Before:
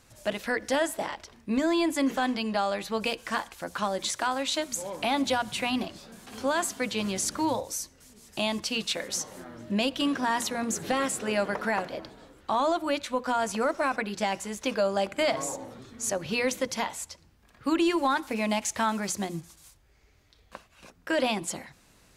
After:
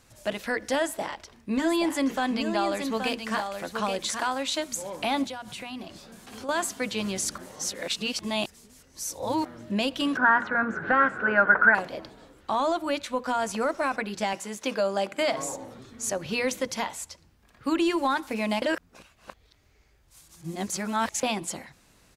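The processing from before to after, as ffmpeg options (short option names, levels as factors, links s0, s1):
-filter_complex "[0:a]asplit=3[s0][s1][s2];[s0]afade=t=out:st=1.58:d=0.02[s3];[s1]aecho=1:1:825:0.473,afade=t=in:st=1.58:d=0.02,afade=t=out:st=4.32:d=0.02[s4];[s2]afade=t=in:st=4.32:d=0.02[s5];[s3][s4][s5]amix=inputs=3:normalize=0,asettb=1/sr,asplit=3[s6][s7][s8];[s6]atrim=end=5.244[s9];[s7]atrim=start=5.24:end=6.49,asetpts=PTS-STARTPTS,afade=t=in:d=0.004:c=qsin,afade=t=out:st=1.246:d=0.004:c=qsin,acompressor=threshold=0.0141:ratio=3:attack=3.2:release=140:knee=1:detection=peak[s10];[s8]atrim=start=6.486[s11];[s9][s10]acrossfade=d=0.004:c1=hsin:c2=qsin[s12];[s12][s11]acrossfade=d=0.004:c1=qsin:c2=hsin,asettb=1/sr,asplit=3[s13][s14][s15];[s13]atrim=end=10.174[s16];[s14]atrim=start=10.17:end=11.75,asetpts=PTS-STARTPTS,afade=t=in:d=0.004:c=qsin,afade=t=out:st=1.576:d=0.004:c=qsin,lowpass=f=1500:t=q:w=12[s17];[s15]atrim=start=11.746[s18];[s16][s17]acrossfade=d=0.004:c1=hsin:c2=qsin[s19];[s19][s18]acrossfade=d=0.004:c1=qsin:c2=hsin,asettb=1/sr,asplit=3[s20][s21][s22];[s20]atrim=end=14.334[s23];[s21]atrim=start=14.33:end=15.38,asetpts=PTS-STARTPTS,afade=t=in:d=0.004:c=qsin,afade=t=out:st=1.046:d=0.004:c=qsin,highpass=160[s24];[s22]atrim=start=15.376[s25];[s23][s24]acrossfade=d=0.004:c1=hsin:c2=qsin[s26];[s26][s25]acrossfade=d=0.004:c1=qsin:c2=hsin,asplit=5[s27][s28][s29][s30][s31];[s27]atrim=end=7.382[s32];[s28]atrim=start=7.378:end=9.452,asetpts=PTS-STARTPTS,areverse[s33];[s29]atrim=start=9.448:end=18.622[s34];[s30]atrim=start=18.618:end=21.232,asetpts=PTS-STARTPTS,areverse[s35];[s31]atrim=start=21.228[s36];[s32][s33]acrossfade=d=0.004:c1=hsin:c2=hsin[s37];[s37][s34]acrossfade=d=0.004:c1=hsin:c2=hsin[s38];[s38][s35]acrossfade=d=0.004:c1=hsin:c2=hsin[s39];[s39][s36]acrossfade=d=0.004:c1=hsin:c2=hsin"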